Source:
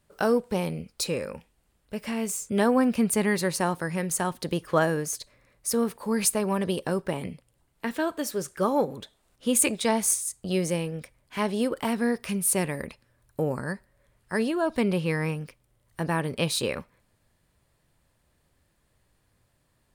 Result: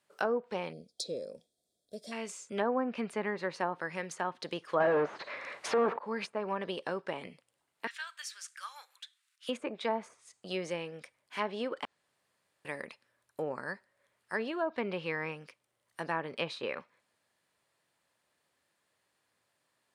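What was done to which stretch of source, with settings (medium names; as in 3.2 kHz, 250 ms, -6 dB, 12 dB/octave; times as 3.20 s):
0.73–2.12 s: time-frequency box 750–3200 Hz -23 dB
4.80–5.99 s: overdrive pedal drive 36 dB, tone 1.8 kHz, clips at -11.5 dBFS
7.87–9.49 s: high-pass 1.5 kHz 24 dB/octave
11.85–12.65 s: room tone
whole clip: frequency weighting A; low-pass that closes with the level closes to 1.1 kHz, closed at -22.5 dBFS; trim -4 dB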